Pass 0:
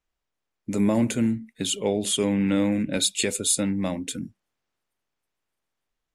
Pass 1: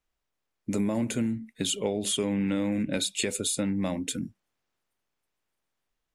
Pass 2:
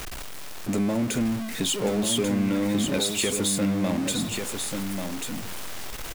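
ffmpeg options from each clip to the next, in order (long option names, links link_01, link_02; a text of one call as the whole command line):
ffmpeg -i in.wav -filter_complex "[0:a]acrossover=split=3100[link_01][link_02];[link_02]alimiter=limit=-16.5dB:level=0:latency=1:release=365[link_03];[link_01][link_03]amix=inputs=2:normalize=0,acompressor=threshold=-24dB:ratio=6" out.wav
ffmpeg -i in.wav -filter_complex "[0:a]aeval=exprs='val(0)+0.5*0.0376*sgn(val(0))':channel_layout=same,asplit=2[link_01][link_02];[link_02]aecho=0:1:1139:0.501[link_03];[link_01][link_03]amix=inputs=2:normalize=0" out.wav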